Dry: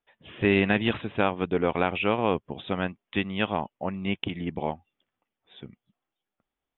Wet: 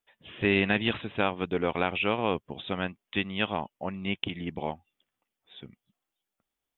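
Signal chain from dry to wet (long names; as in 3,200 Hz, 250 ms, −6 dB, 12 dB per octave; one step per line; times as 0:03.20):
high-shelf EQ 3,300 Hz +10 dB
level −3.5 dB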